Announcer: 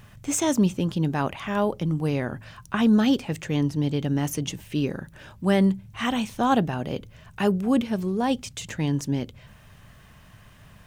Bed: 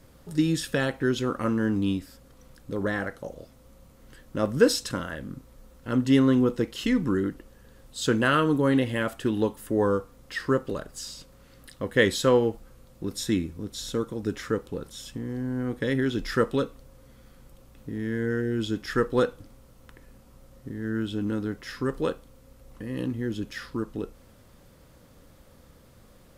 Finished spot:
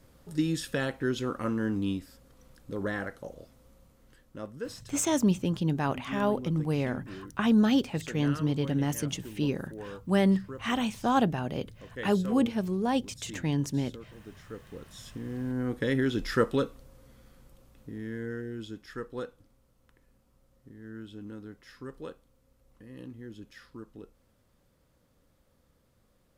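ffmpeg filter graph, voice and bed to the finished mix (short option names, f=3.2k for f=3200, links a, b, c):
-filter_complex "[0:a]adelay=4650,volume=-3.5dB[a];[1:a]volume=12.5dB,afade=t=out:st=3.6:d=1:silence=0.199526,afade=t=in:st=14.47:d=1.15:silence=0.141254,afade=t=out:st=16.61:d=2.25:silence=0.237137[b];[a][b]amix=inputs=2:normalize=0"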